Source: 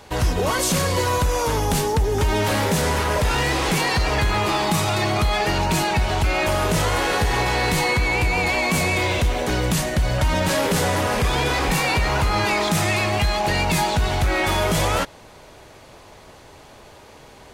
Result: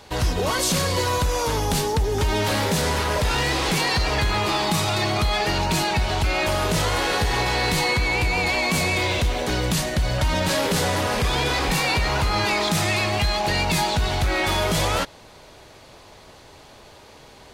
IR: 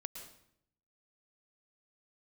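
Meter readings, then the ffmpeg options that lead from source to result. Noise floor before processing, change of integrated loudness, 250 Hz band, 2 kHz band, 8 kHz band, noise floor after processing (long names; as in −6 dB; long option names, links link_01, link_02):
−46 dBFS, −1.0 dB, −2.0 dB, −1.0 dB, −1.0 dB, −47 dBFS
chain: -af "equalizer=frequency=4200:width_type=o:width=0.91:gain=4.5,volume=-2dB"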